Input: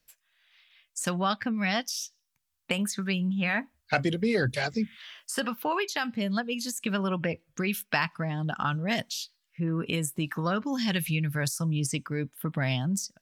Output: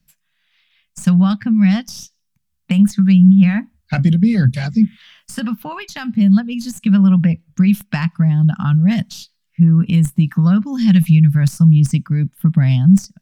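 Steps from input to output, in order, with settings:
stylus tracing distortion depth 0.021 ms
low shelf with overshoot 270 Hz +12 dB, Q 3
level +1 dB

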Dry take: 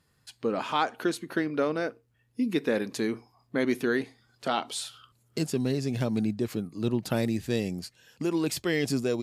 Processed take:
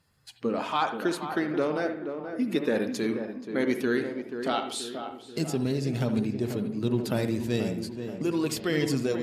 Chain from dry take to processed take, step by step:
spectral magnitudes quantised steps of 15 dB
tape delay 482 ms, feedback 59%, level −6.5 dB, low-pass 1,300 Hz
on a send at −8.5 dB: convolution reverb, pre-delay 58 ms

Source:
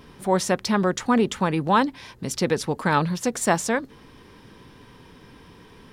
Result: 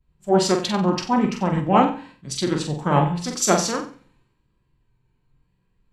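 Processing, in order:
flutter between parallel walls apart 7.9 metres, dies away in 0.5 s
on a send at −7 dB: convolution reverb RT60 0.55 s, pre-delay 3 ms
on the sum: formants moved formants −4 semitones
pitch vibrato 0.93 Hz 44 cents
multiband upward and downward expander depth 100%
level −1 dB

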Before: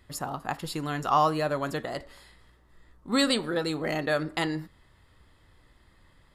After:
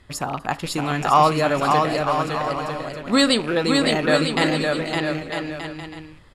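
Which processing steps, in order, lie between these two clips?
loose part that buzzes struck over −40 dBFS, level −32 dBFS
low-pass filter 10,000 Hz 12 dB per octave
on a send: bouncing-ball delay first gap 560 ms, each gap 0.7×, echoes 5
on the sum: level +7 dB

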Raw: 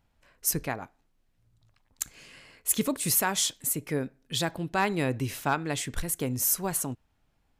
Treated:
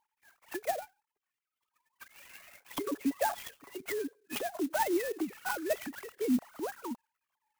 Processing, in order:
three sine waves on the formant tracks
treble cut that deepens with the level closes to 1,600 Hz, closed at −26.5 dBFS
0:02.13–0:04.42: comb filter 7.1 ms, depth 63%
brickwall limiter −22.5 dBFS, peak gain reduction 10 dB
phase shifter 0.31 Hz, delay 3.4 ms, feedback 57%
converter with an unsteady clock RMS 0.056 ms
level −4 dB

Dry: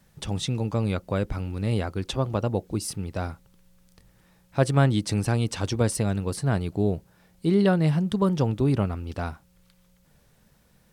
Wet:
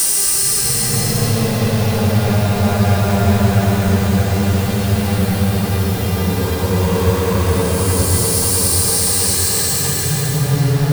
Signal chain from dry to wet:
spike at every zero crossing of −16.5 dBFS
hum with harmonics 400 Hz, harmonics 14, −44 dBFS −3 dB per octave
leveller curve on the samples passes 5
extreme stretch with random phases 21×, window 0.10 s, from 0:05.94
on a send: delay with a low-pass on its return 645 ms, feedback 71%, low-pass 2,800 Hz, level −6.5 dB
on the sum: level −4 dB

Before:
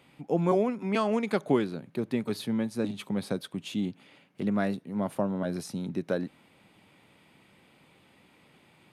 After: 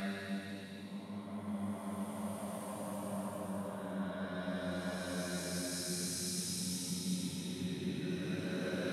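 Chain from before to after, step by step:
sample-and-hold tremolo 2.4 Hz, depth 70%
extreme stretch with random phases 6.7×, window 0.50 s, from 0:04.72
guitar amp tone stack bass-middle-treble 5-5-5
level +12.5 dB

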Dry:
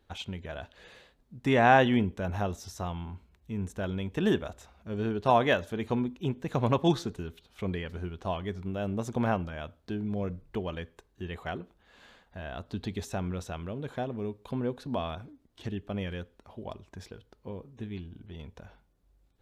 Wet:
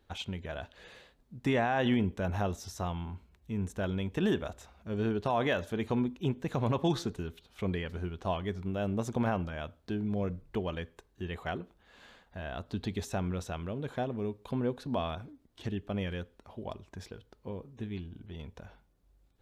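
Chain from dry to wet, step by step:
brickwall limiter −19.5 dBFS, peak gain reduction 11.5 dB

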